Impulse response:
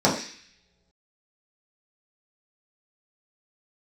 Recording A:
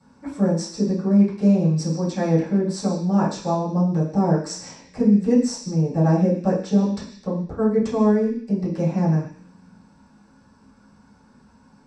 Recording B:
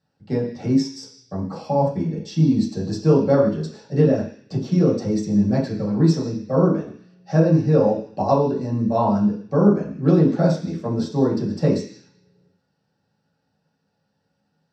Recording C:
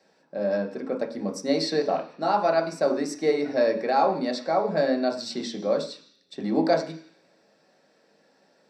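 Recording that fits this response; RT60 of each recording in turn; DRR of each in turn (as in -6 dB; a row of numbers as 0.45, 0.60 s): B; not exponential, not exponential, not exponential; -12.5, -6.5, 1.5 dB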